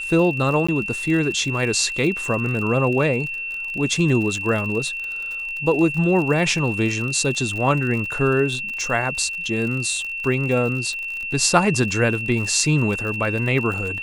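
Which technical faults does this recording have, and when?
crackle 64 per s -28 dBFS
whine 2.7 kHz -26 dBFS
0.67–0.69 s: dropout 15 ms

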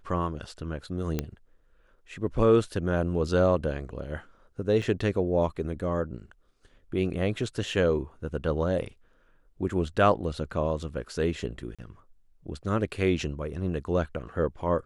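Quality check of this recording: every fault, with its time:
1.19 s: pop -14 dBFS
4.82 s: dropout 4.4 ms
11.75–11.79 s: dropout 36 ms

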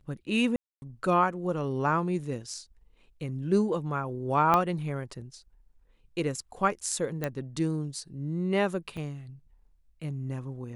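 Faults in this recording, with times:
0.56–0.82 s: dropout 260 ms
4.54 s: pop -11 dBFS
7.24 s: pop -16 dBFS
8.97 s: dropout 4.8 ms

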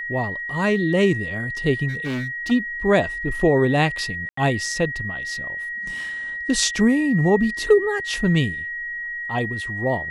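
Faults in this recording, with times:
whine 1.9 kHz -27 dBFS
1.88–2.52 s: clipped -23 dBFS
4.29–4.37 s: dropout 84 ms

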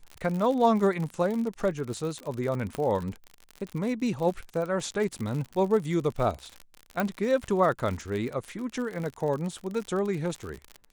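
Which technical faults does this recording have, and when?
crackle 68 per s -32 dBFS
2.75 s: pop -19 dBFS
7.00 s: pop -14 dBFS

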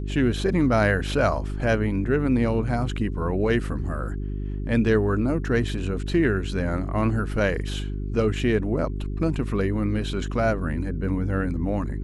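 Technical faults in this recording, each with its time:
hum 50 Hz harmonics 8 -29 dBFS

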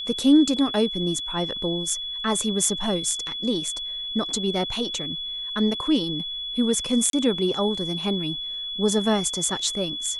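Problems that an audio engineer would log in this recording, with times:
whine 3.4 kHz -29 dBFS
7.10–7.13 s: dropout 32 ms

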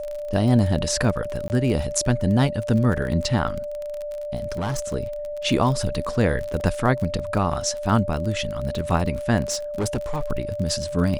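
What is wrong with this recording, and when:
crackle 30 per s -27 dBFS
whine 590 Hz -28 dBFS
1.48–1.50 s: dropout 19 ms
4.52–4.94 s: clipped -22 dBFS
6.60 s: dropout 2.3 ms
9.42–10.23 s: clipped -20 dBFS

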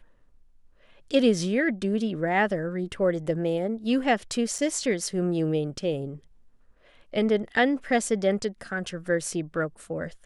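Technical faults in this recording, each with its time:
4.58–4.59 s: dropout 5.8 ms

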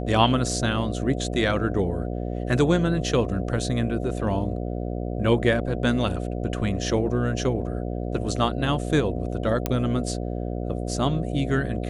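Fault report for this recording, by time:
buzz 60 Hz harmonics 12 -29 dBFS
9.66 s: pop -9 dBFS

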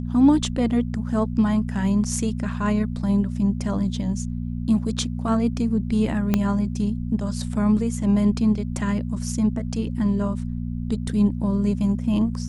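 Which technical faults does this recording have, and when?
hum 60 Hz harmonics 4 -28 dBFS
6.34 s: pop -7 dBFS

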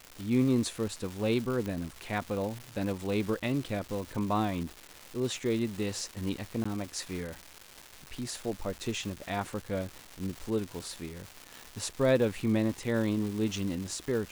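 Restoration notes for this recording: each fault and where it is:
crackle 560 per s -36 dBFS
1.66 s: pop -22 dBFS
6.64–6.66 s: dropout 15 ms

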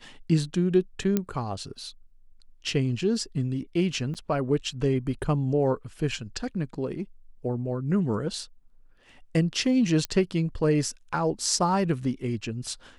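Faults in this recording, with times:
1.17 s: pop -11 dBFS
4.14–4.15 s: dropout 8.1 ms
10.05 s: pop -14 dBFS

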